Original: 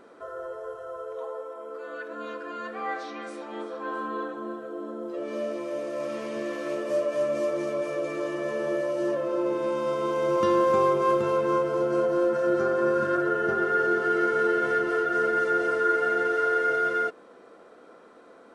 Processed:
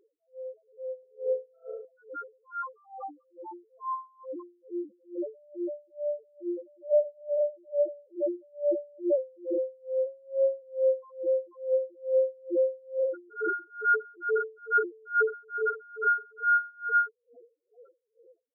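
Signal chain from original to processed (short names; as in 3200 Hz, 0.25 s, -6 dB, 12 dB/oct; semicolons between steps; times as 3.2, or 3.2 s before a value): tracing distortion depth 0.088 ms; 10.05–10.62 robotiser 135 Hz; AGC gain up to 11 dB; loudest bins only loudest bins 1; 0.99–1.85 flutter echo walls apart 6.3 m, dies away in 0.8 s; dB-linear tremolo 2.3 Hz, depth 33 dB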